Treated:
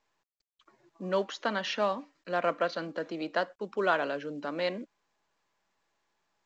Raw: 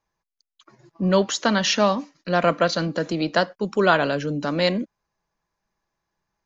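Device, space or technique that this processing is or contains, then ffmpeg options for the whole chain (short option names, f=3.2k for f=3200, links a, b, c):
telephone: -af "highpass=300,lowpass=3.2k,volume=-8.5dB" -ar 16000 -c:a pcm_mulaw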